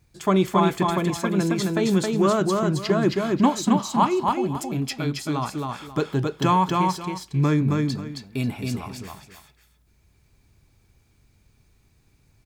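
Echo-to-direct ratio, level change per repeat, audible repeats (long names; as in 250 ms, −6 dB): −3.0 dB, −12.5 dB, 2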